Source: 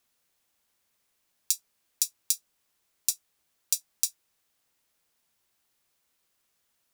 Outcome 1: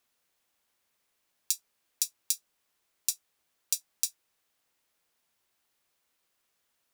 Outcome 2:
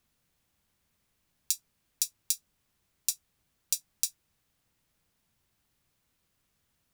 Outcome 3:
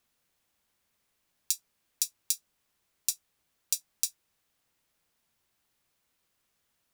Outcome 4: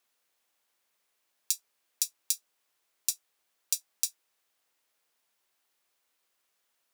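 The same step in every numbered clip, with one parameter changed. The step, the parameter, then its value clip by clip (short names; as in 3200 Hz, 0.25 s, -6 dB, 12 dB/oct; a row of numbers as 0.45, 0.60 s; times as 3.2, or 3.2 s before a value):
tone controls, bass: -4, +14, +4, -13 dB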